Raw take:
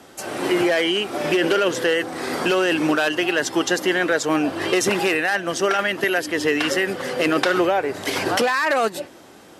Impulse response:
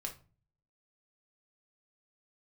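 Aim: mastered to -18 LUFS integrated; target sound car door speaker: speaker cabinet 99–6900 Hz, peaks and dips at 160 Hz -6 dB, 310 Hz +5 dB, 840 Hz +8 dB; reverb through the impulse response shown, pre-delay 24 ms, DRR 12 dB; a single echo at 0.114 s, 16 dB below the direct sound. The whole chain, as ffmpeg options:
-filter_complex "[0:a]aecho=1:1:114:0.158,asplit=2[a][b];[1:a]atrim=start_sample=2205,adelay=24[c];[b][c]afir=irnorm=-1:irlink=0,volume=-11dB[d];[a][d]amix=inputs=2:normalize=0,highpass=99,equalizer=f=160:t=q:w=4:g=-6,equalizer=f=310:t=q:w=4:g=5,equalizer=f=840:t=q:w=4:g=8,lowpass=f=6.9k:w=0.5412,lowpass=f=6.9k:w=1.3066,volume=0.5dB"

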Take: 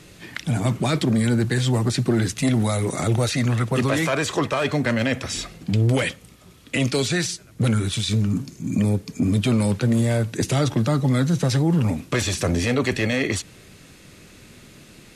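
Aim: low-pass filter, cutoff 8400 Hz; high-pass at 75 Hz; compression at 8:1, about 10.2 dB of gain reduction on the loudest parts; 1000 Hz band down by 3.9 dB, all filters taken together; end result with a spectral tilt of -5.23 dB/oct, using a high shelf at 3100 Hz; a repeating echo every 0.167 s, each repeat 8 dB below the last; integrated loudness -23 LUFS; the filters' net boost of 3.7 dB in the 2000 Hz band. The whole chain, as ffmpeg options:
-af "highpass=75,lowpass=8.4k,equalizer=f=1k:t=o:g=-7.5,equalizer=f=2k:t=o:g=8.5,highshelf=f=3.1k:g=-6.5,acompressor=threshold=-27dB:ratio=8,aecho=1:1:167|334|501|668|835:0.398|0.159|0.0637|0.0255|0.0102,volume=7.5dB"

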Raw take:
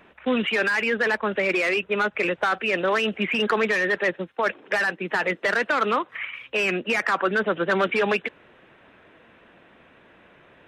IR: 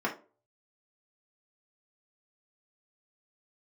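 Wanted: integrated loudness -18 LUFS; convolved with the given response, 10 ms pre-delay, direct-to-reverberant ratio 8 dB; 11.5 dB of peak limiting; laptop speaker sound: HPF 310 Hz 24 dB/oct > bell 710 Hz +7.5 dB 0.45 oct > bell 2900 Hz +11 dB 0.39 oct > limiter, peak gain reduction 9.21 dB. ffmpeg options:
-filter_complex "[0:a]alimiter=limit=-23dB:level=0:latency=1,asplit=2[a][b];[1:a]atrim=start_sample=2205,adelay=10[c];[b][c]afir=irnorm=-1:irlink=0,volume=-16.5dB[d];[a][d]amix=inputs=2:normalize=0,highpass=f=310:w=0.5412,highpass=f=310:w=1.3066,equalizer=f=710:t=o:w=0.45:g=7.5,equalizer=f=2.9k:t=o:w=0.39:g=11,volume=12.5dB,alimiter=limit=-10dB:level=0:latency=1"

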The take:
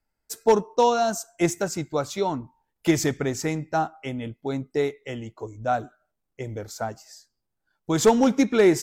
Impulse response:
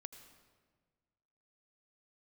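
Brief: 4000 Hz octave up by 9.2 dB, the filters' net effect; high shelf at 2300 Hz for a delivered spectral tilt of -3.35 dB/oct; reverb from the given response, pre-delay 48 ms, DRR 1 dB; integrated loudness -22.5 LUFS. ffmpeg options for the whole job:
-filter_complex "[0:a]highshelf=f=2.3k:g=7,equalizer=f=4k:t=o:g=5,asplit=2[a][b];[1:a]atrim=start_sample=2205,adelay=48[c];[b][c]afir=irnorm=-1:irlink=0,volume=4.5dB[d];[a][d]amix=inputs=2:normalize=0,volume=-2dB"

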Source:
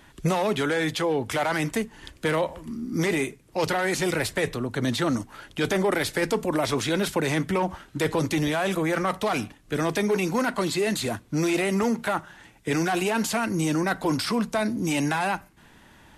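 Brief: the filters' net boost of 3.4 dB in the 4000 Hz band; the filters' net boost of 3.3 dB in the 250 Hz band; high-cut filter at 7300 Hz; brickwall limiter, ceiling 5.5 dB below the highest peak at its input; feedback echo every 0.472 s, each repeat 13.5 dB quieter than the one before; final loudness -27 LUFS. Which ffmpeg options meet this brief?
-af "lowpass=7.3k,equalizer=f=250:t=o:g=4.5,equalizer=f=4k:t=o:g=4.5,alimiter=limit=-16.5dB:level=0:latency=1,aecho=1:1:472|944:0.211|0.0444,volume=-1.5dB"

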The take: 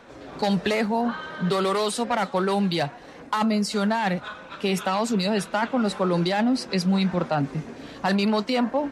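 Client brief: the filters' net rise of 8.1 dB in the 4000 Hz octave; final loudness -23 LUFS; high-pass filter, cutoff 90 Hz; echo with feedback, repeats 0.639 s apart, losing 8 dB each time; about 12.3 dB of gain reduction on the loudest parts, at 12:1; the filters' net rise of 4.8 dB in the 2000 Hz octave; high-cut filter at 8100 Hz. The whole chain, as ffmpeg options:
-af "highpass=90,lowpass=8.1k,equalizer=f=2k:t=o:g=4,equalizer=f=4k:t=o:g=8.5,acompressor=threshold=-30dB:ratio=12,aecho=1:1:639|1278|1917|2556|3195:0.398|0.159|0.0637|0.0255|0.0102,volume=10dB"

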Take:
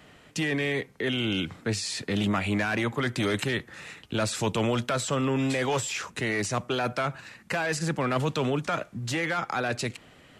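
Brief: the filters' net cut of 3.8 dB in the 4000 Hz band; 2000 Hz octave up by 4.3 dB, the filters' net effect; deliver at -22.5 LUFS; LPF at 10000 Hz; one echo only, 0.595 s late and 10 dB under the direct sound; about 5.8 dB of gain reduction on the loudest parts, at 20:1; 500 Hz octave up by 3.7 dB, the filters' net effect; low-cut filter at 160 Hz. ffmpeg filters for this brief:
-af "highpass=160,lowpass=10k,equalizer=f=500:t=o:g=4.5,equalizer=f=2k:t=o:g=7,equalizer=f=4k:t=o:g=-8.5,acompressor=threshold=-25dB:ratio=20,aecho=1:1:595:0.316,volume=7.5dB"

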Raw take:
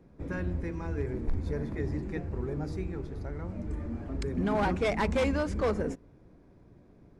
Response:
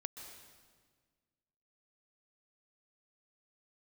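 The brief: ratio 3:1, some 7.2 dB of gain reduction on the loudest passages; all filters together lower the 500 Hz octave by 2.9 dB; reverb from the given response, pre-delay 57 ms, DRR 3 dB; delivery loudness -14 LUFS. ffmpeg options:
-filter_complex "[0:a]equalizer=f=500:t=o:g=-3.5,acompressor=threshold=-33dB:ratio=3,asplit=2[a][b];[1:a]atrim=start_sample=2205,adelay=57[c];[b][c]afir=irnorm=-1:irlink=0,volume=-0.5dB[d];[a][d]amix=inputs=2:normalize=0,volume=22dB"

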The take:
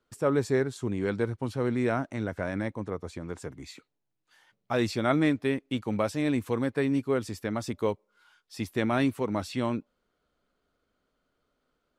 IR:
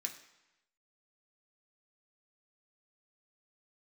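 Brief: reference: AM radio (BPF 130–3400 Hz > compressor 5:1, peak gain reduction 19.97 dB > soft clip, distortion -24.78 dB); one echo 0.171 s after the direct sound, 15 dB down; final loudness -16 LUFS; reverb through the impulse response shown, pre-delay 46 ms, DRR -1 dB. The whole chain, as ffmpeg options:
-filter_complex "[0:a]aecho=1:1:171:0.178,asplit=2[a][b];[1:a]atrim=start_sample=2205,adelay=46[c];[b][c]afir=irnorm=-1:irlink=0,volume=2.5dB[d];[a][d]amix=inputs=2:normalize=0,highpass=130,lowpass=3.4k,acompressor=threshold=-40dB:ratio=5,asoftclip=threshold=-29dB,volume=27dB"

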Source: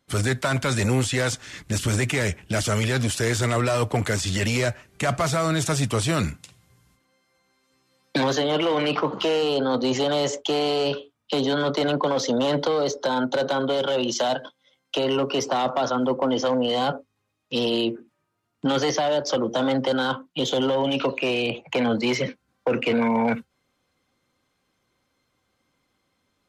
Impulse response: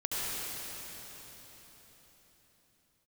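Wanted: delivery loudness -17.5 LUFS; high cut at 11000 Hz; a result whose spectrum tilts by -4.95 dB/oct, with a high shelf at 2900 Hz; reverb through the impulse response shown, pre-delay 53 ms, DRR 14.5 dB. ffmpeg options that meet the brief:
-filter_complex "[0:a]lowpass=11k,highshelf=f=2.9k:g=-7,asplit=2[a][b];[1:a]atrim=start_sample=2205,adelay=53[c];[b][c]afir=irnorm=-1:irlink=0,volume=-22dB[d];[a][d]amix=inputs=2:normalize=0,volume=7dB"

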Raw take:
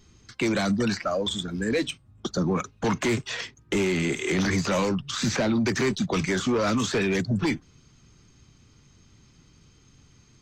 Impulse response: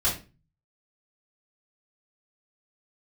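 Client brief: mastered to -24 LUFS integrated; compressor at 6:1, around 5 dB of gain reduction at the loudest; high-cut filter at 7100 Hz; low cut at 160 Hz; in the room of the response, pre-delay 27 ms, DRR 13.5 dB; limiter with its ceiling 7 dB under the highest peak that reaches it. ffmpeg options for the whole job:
-filter_complex "[0:a]highpass=160,lowpass=7.1k,acompressor=threshold=-26dB:ratio=6,alimiter=limit=-24dB:level=0:latency=1,asplit=2[a][b];[1:a]atrim=start_sample=2205,adelay=27[c];[b][c]afir=irnorm=-1:irlink=0,volume=-24dB[d];[a][d]amix=inputs=2:normalize=0,volume=9dB"

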